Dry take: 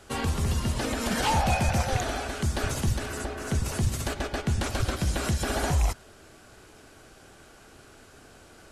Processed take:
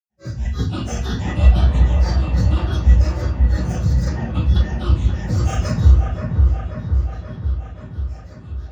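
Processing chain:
fade in at the beginning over 0.71 s
high-pass filter 73 Hz
low-shelf EQ 110 Hz +9.5 dB
phaser with its sweep stopped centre 2,200 Hz, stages 6
hollow resonant body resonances 390/640/3,400 Hz, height 18 dB, ringing for 90 ms
granular cloud 201 ms, grains 6.1 per second, pitch spread up and down by 12 semitones
high-shelf EQ 5,300 Hz +8.5 dB
delay with a low-pass on its return 532 ms, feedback 65%, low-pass 1,900 Hz, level −3.5 dB
convolution reverb RT60 0.40 s, pre-delay 4 ms, DRR −13 dB
level −10 dB

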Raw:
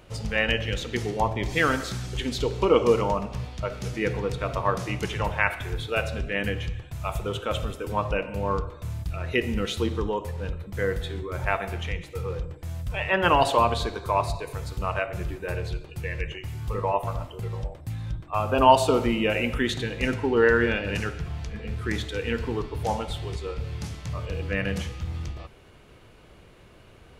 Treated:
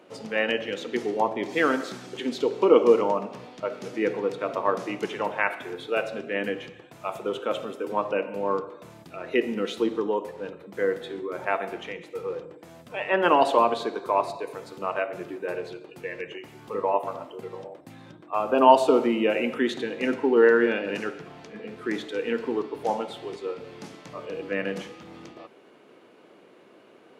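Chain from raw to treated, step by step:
high-pass filter 260 Hz 24 dB per octave
spectral tilt −2.5 dB per octave

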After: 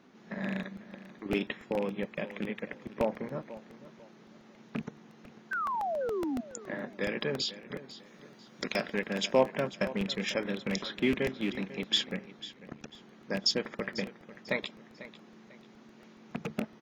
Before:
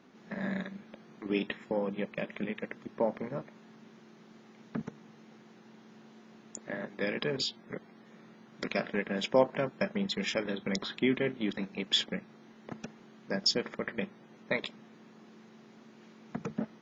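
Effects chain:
loose part that buzzes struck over −33 dBFS, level −28 dBFS
0:05.51–0:06.41: sound drawn into the spectrogram fall 230–1,600 Hz −32 dBFS
0:07.99–0:09.35: bass and treble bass −1 dB, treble +8 dB
0:12.41–0:12.93: amplitude modulation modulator 74 Hz, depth 80%
repeating echo 495 ms, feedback 31%, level −16 dB
regular buffer underruns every 0.14 s, samples 64, repeat, from 0:00.63

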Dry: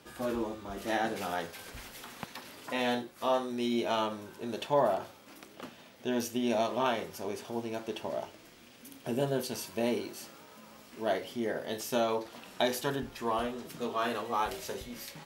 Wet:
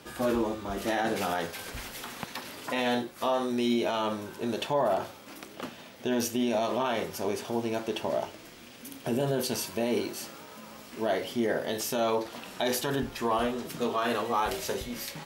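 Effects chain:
brickwall limiter −24.5 dBFS, peak gain reduction 9 dB
level +6.5 dB

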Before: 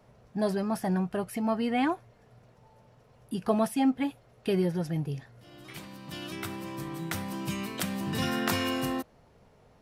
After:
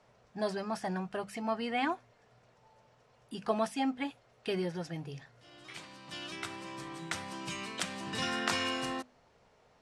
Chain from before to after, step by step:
low-pass filter 8,500 Hz 24 dB per octave
low-shelf EQ 470 Hz −10.5 dB
mains-hum notches 50/100/150/200/250 Hz

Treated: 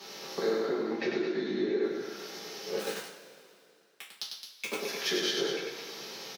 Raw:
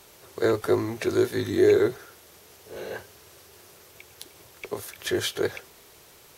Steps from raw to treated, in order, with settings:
0:00.58–0:01.82: high-frequency loss of the air 180 metres
downward compressor 8 to 1, threshold −37 dBFS, peak gain reduction 21 dB
high shelf with overshoot 6,700 Hz −8.5 dB, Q 3
on a send: loudspeakers that aren't time-aligned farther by 34 metres −4 dB, 74 metres −8 dB
0:02.78–0:04.79: on the sum: centre clipping without the shift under −34 dBFS
Butterworth high-pass 150 Hz 72 dB per octave
coupled-rooms reverb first 0.31 s, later 2.6 s, from −18 dB, DRR −6 dB

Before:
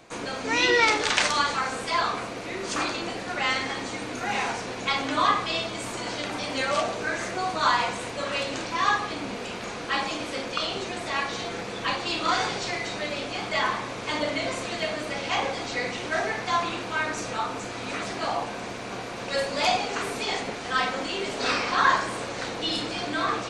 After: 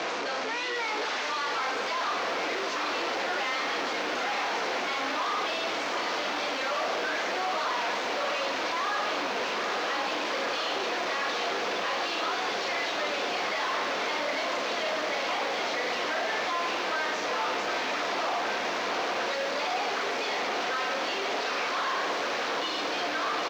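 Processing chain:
sign of each sample alone
Butterworth low-pass 6,200 Hz 36 dB per octave
high-shelf EQ 4,500 Hz −10.5 dB
brickwall limiter −30.5 dBFS, peak gain reduction 3 dB
high-pass filter 430 Hz 12 dB per octave
far-end echo of a speakerphone 150 ms, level −18 dB
feedback echo at a low word length 757 ms, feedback 80%, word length 10 bits, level −8 dB
level +2.5 dB

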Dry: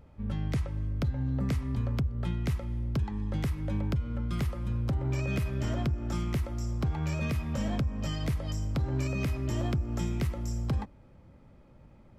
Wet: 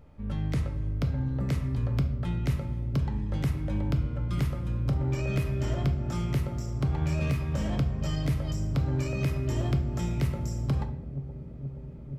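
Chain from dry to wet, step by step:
0:06.45–0:07.76: phase distortion by the signal itself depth 0.06 ms
on a send: bucket-brigade delay 476 ms, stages 2,048, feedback 84%, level −14.5 dB
on the sum: rectangular room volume 140 cubic metres, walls mixed, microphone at 0.44 metres

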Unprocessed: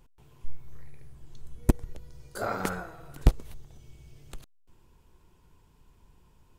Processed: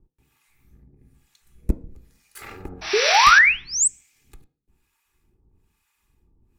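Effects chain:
lower of the sound and its delayed copy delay 2.4 ms
high-shelf EQ 7,000 Hz +7 dB
sound drawn into the spectrogram noise, 0:02.81–0:03.39, 610–6,000 Hz −19 dBFS
harmonic generator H 5 −31 dB, 7 −31 dB, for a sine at −2 dBFS
sound drawn into the spectrogram rise, 0:02.93–0:03.88, 390–8,500 Hz −9 dBFS
two-band tremolo in antiphase 1.1 Hz, depth 100%, crossover 770 Hz
convolution reverb RT60 0.45 s, pre-delay 3 ms, DRR 10 dB

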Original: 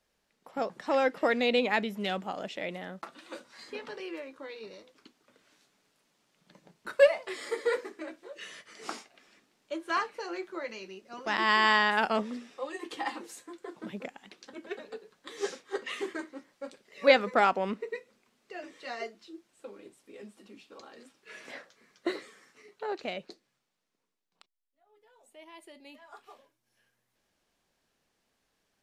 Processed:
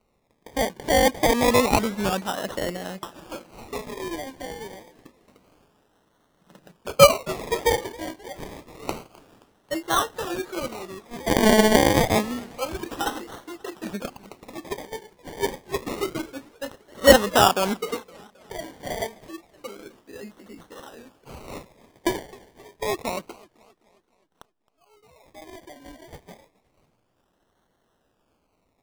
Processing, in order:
sample-and-hold swept by an LFO 26×, swing 60% 0.28 Hz
feedback echo with a swinging delay time 263 ms, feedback 51%, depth 199 cents, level −22.5 dB
level +7.5 dB

